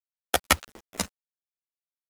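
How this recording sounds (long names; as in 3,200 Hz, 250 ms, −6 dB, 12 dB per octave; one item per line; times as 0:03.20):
a quantiser's noise floor 8 bits, dither none
a shimmering, thickened sound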